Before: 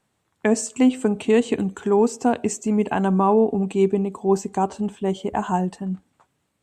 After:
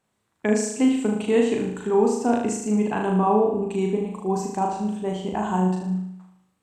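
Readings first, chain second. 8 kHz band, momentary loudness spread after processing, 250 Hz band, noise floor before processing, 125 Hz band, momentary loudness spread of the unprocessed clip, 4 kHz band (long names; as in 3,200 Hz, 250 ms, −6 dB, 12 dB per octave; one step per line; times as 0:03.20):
−1.5 dB, 7 LU, −1.5 dB, −72 dBFS, −1.0 dB, 7 LU, −1.0 dB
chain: tape wow and flutter 29 cents
flutter between parallel walls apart 6.5 metres, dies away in 0.75 s
level −4.5 dB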